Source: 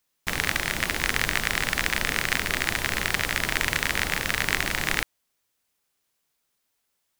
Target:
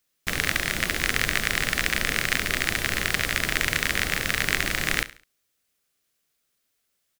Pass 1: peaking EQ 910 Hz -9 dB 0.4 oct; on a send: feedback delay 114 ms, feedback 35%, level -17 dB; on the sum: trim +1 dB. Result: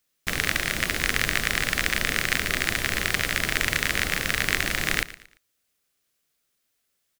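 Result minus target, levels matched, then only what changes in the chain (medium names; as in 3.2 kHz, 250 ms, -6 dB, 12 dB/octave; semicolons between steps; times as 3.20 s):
echo 45 ms late
change: feedback delay 69 ms, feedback 35%, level -17 dB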